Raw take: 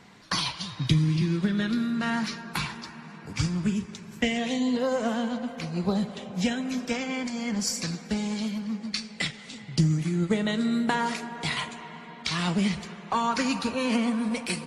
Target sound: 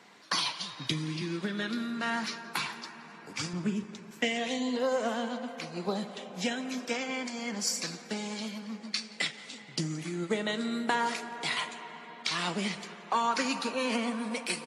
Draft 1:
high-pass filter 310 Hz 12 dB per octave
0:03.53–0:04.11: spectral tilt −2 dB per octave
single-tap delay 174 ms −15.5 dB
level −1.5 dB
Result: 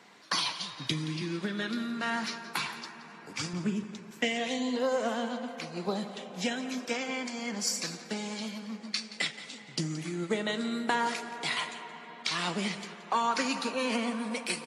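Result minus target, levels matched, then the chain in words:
echo-to-direct +7 dB
high-pass filter 310 Hz 12 dB per octave
0:03.53–0:04.11: spectral tilt −2 dB per octave
single-tap delay 174 ms −22.5 dB
level −1.5 dB

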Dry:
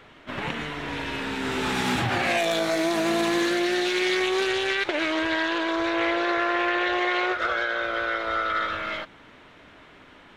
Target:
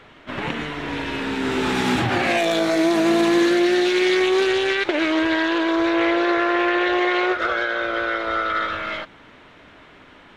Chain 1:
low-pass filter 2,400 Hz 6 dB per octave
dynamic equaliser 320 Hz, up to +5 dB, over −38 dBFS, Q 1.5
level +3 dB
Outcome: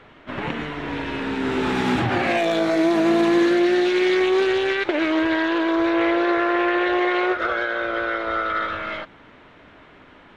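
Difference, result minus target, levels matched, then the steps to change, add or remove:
8,000 Hz band −6.5 dB
change: low-pass filter 8,500 Hz 6 dB per octave

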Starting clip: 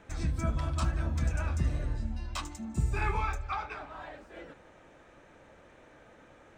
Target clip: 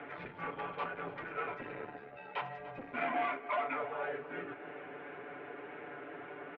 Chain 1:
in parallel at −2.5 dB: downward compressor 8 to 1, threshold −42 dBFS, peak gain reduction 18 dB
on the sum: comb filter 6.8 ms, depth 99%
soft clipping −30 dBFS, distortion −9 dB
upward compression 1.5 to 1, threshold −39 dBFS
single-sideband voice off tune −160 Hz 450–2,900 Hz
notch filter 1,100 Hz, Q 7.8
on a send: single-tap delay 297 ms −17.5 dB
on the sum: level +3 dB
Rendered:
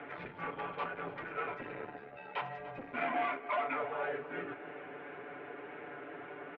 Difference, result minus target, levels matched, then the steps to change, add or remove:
downward compressor: peak gain reduction −8 dB
change: downward compressor 8 to 1, threshold −51 dBFS, peak gain reduction 26 dB

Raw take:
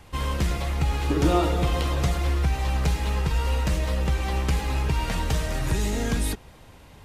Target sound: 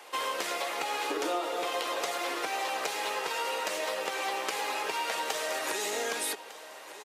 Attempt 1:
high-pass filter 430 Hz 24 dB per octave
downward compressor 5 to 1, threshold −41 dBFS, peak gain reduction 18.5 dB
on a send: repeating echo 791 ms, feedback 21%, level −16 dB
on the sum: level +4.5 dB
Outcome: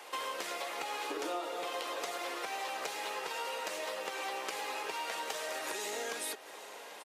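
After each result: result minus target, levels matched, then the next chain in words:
echo 412 ms early; downward compressor: peak gain reduction +6 dB
high-pass filter 430 Hz 24 dB per octave
downward compressor 5 to 1, threshold −41 dBFS, peak gain reduction 18.5 dB
on a send: repeating echo 1,203 ms, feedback 21%, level −16 dB
on the sum: level +4.5 dB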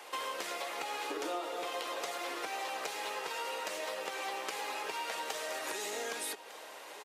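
downward compressor: peak gain reduction +6 dB
high-pass filter 430 Hz 24 dB per octave
downward compressor 5 to 1, threshold −33.5 dBFS, peak gain reduction 12.5 dB
on a send: repeating echo 1,203 ms, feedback 21%, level −16 dB
on the sum: level +4.5 dB

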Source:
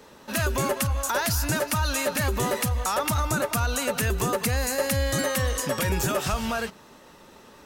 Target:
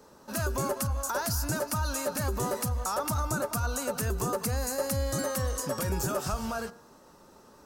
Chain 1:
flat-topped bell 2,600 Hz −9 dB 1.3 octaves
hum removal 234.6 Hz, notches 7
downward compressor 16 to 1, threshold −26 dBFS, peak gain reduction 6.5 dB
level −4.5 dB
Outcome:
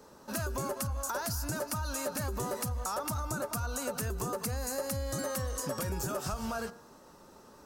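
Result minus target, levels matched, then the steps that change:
downward compressor: peak gain reduction +6.5 dB
remove: downward compressor 16 to 1, threshold −26 dBFS, peak gain reduction 6.5 dB

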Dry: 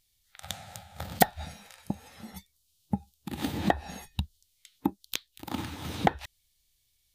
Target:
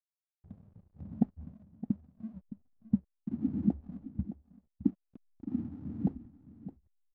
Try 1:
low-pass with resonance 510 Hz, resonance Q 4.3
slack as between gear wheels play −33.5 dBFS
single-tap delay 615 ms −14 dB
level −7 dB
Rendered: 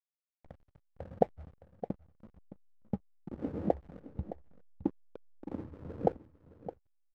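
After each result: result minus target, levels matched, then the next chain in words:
500 Hz band +18.5 dB; slack as between gear wheels: distortion +11 dB
low-pass with resonance 240 Hz, resonance Q 4.3
slack as between gear wheels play −33.5 dBFS
single-tap delay 615 ms −14 dB
level −7 dB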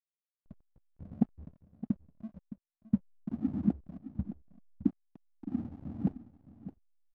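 slack as between gear wheels: distortion +10 dB
low-pass with resonance 240 Hz, resonance Q 4.3
slack as between gear wheels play −45 dBFS
single-tap delay 615 ms −14 dB
level −7 dB

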